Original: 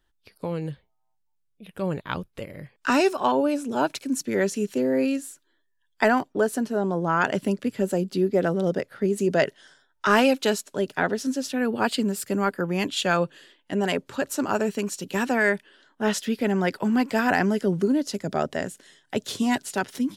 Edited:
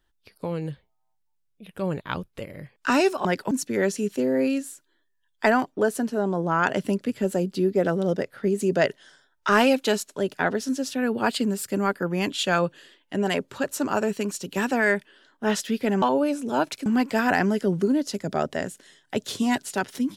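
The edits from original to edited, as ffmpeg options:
ffmpeg -i in.wav -filter_complex "[0:a]asplit=5[link_01][link_02][link_03][link_04][link_05];[link_01]atrim=end=3.252[link_06];[link_02]atrim=start=16.598:end=16.862[link_07];[link_03]atrim=start=4.088:end=16.602[link_08];[link_04]atrim=start=3.248:end=4.092[link_09];[link_05]atrim=start=16.858[link_10];[link_06][link_07]acrossfade=duration=0.004:curve1=hsin:curve2=hsin[link_11];[link_11][link_08]acrossfade=duration=0.004:curve1=hsin:curve2=hsin[link_12];[link_12][link_09]acrossfade=duration=0.004:curve1=hsin:curve2=hsin[link_13];[link_13][link_10]acrossfade=duration=0.004:curve1=hsin:curve2=hsin" out.wav

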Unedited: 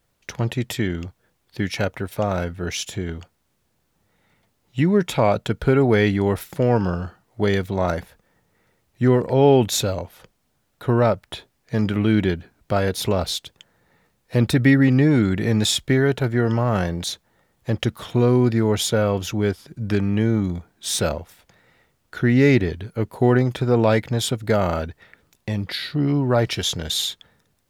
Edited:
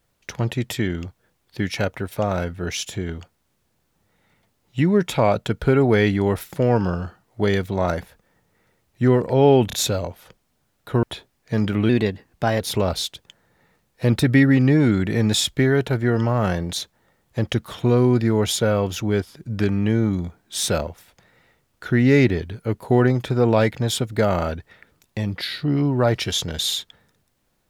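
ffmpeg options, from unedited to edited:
ffmpeg -i in.wav -filter_complex "[0:a]asplit=6[link_01][link_02][link_03][link_04][link_05][link_06];[link_01]atrim=end=9.702[link_07];[link_02]atrim=start=9.668:end=9.702[link_08];[link_03]atrim=start=9.668:end=10.972[link_09];[link_04]atrim=start=11.238:end=12.104[link_10];[link_05]atrim=start=12.1:end=12.91,asetpts=PTS-STARTPTS,asetrate=50274,aresample=44100,atrim=end_sample=31334,asetpts=PTS-STARTPTS[link_11];[link_06]atrim=start=12.906[link_12];[link_07][link_08]acrossfade=duration=0.004:curve1=hsin:curve2=hsin[link_13];[link_13][link_09]acrossfade=duration=0.004:curve1=hsin:curve2=hsin[link_14];[link_14][link_10]acrossfade=duration=0.004:curve1=hsin:curve2=hsin[link_15];[link_15][link_11]acrossfade=duration=0.004:curve1=hsin:curve2=hsin[link_16];[link_16][link_12]acrossfade=duration=0.004:curve1=hsin:curve2=hsin" out.wav

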